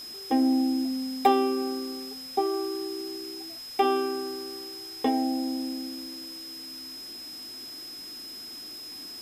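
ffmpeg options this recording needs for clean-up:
-af "adeclick=t=4,bandreject=f=5.1k:w=30,afwtdn=0.004"

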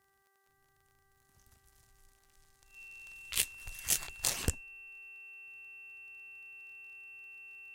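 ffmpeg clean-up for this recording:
-af "adeclick=t=4,bandreject=f=391.2:t=h:w=4,bandreject=f=782.4:t=h:w=4,bandreject=f=1.1736k:t=h:w=4,bandreject=f=1.5648k:t=h:w=4,bandreject=f=1.956k:t=h:w=4,bandreject=f=2.7k:w=30,agate=range=-21dB:threshold=-63dB"

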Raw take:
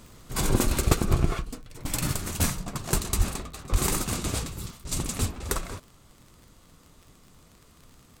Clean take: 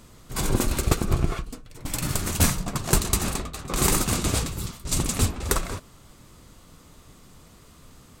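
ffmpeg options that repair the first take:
-filter_complex "[0:a]adeclick=t=4,asplit=3[a][b][c];[a]afade=t=out:st=3.17:d=0.02[d];[b]highpass=f=140:w=0.5412,highpass=f=140:w=1.3066,afade=t=in:st=3.17:d=0.02,afade=t=out:st=3.29:d=0.02[e];[c]afade=t=in:st=3.29:d=0.02[f];[d][e][f]amix=inputs=3:normalize=0,asplit=3[g][h][i];[g]afade=t=out:st=3.71:d=0.02[j];[h]highpass=f=140:w=0.5412,highpass=f=140:w=1.3066,afade=t=in:st=3.71:d=0.02,afade=t=out:st=3.83:d=0.02[k];[i]afade=t=in:st=3.83:d=0.02[l];[j][k][l]amix=inputs=3:normalize=0,asetnsamples=n=441:p=0,asendcmd='2.13 volume volume 5dB',volume=0dB"

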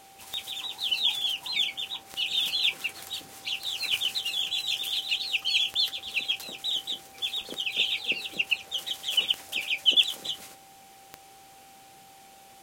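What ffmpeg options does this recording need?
-af "adeclick=t=4,bandreject=f=780:w=30"

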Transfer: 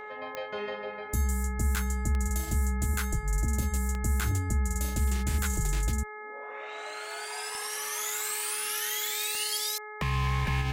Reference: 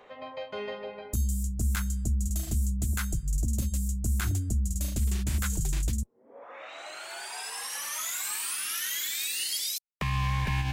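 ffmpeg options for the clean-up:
-af "adeclick=t=4,bandreject=f=424.3:t=h:w=4,bandreject=f=848.6:t=h:w=4,bandreject=f=1.2729k:t=h:w=4,bandreject=f=1.6972k:t=h:w=4,bandreject=f=2.1215k:t=h:w=4"

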